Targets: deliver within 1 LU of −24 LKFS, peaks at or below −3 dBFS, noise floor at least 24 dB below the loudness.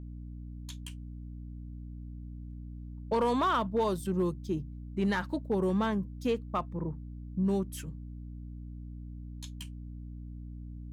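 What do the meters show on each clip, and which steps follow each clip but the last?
share of clipped samples 0.4%; peaks flattened at −21.5 dBFS; mains hum 60 Hz; hum harmonics up to 300 Hz; level of the hum −40 dBFS; integrated loudness −32.5 LKFS; sample peak −21.5 dBFS; target loudness −24.0 LKFS
→ clipped peaks rebuilt −21.5 dBFS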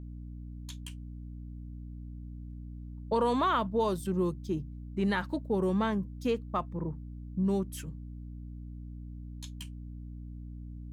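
share of clipped samples 0.0%; mains hum 60 Hz; hum harmonics up to 300 Hz; level of the hum −40 dBFS
→ mains-hum notches 60/120/180/240/300 Hz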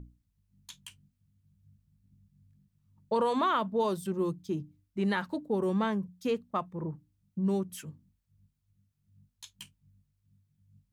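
mains hum none found; integrated loudness −31.5 LKFS; sample peak −17.0 dBFS; target loudness −24.0 LKFS
→ level +7.5 dB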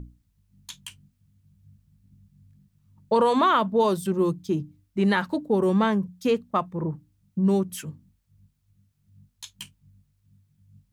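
integrated loudness −24.5 LKFS; sample peak −9.5 dBFS; background noise floor −70 dBFS

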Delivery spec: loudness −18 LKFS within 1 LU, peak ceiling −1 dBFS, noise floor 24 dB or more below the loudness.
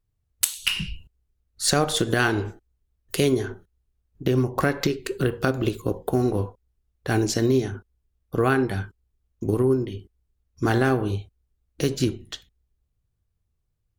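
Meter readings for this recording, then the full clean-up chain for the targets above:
integrated loudness −24.5 LKFS; sample peak −3.0 dBFS; target loudness −18.0 LKFS
→ level +6.5 dB
brickwall limiter −1 dBFS

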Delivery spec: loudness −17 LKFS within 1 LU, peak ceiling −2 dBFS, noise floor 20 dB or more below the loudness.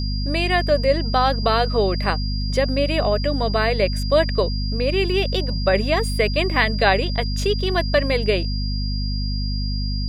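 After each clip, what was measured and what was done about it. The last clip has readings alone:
mains hum 50 Hz; hum harmonics up to 250 Hz; level of the hum −21 dBFS; interfering tone 4,800 Hz; level of the tone −31 dBFS; integrated loudness −21.0 LKFS; sample peak −2.0 dBFS; target loudness −17.0 LKFS
→ hum removal 50 Hz, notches 5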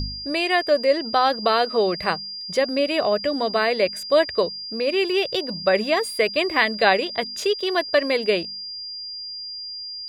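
mains hum none found; interfering tone 4,800 Hz; level of the tone −31 dBFS
→ notch filter 4,800 Hz, Q 30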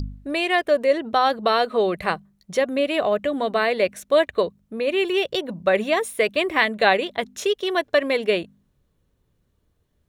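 interfering tone none found; integrated loudness −22.0 LKFS; sample peak −2.5 dBFS; target loudness −17.0 LKFS
→ level +5 dB
brickwall limiter −2 dBFS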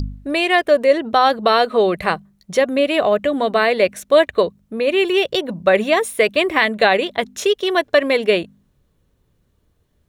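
integrated loudness −17.0 LKFS; sample peak −2.0 dBFS; background noise floor −64 dBFS

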